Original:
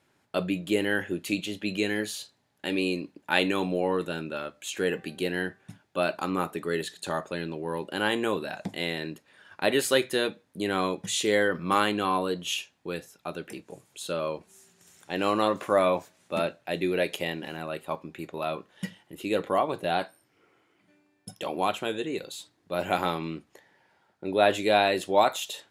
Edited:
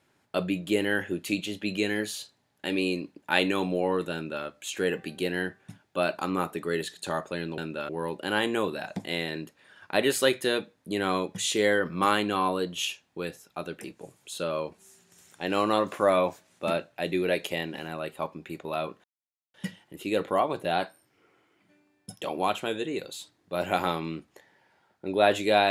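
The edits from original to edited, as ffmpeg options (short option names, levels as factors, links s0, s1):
-filter_complex "[0:a]asplit=4[s0][s1][s2][s3];[s0]atrim=end=7.582[s4];[s1]atrim=start=4.138:end=4.452[s5];[s2]atrim=start=7.578:end=18.73,asetpts=PTS-STARTPTS,afade=t=out:st=11.148:d=0.004:c=hsin,apad=pad_dur=0.5[s6];[s3]atrim=start=18.73,asetpts=PTS-STARTPTS,afade=t=in:d=0.004:c=hsin[s7];[s4][s5]acrossfade=d=0.004:c1=hsin:c2=hsin[s8];[s6][s7]concat=n=2:v=0:a=1[s9];[s8][s9]acrossfade=d=0.004:c1=hsin:c2=hsin"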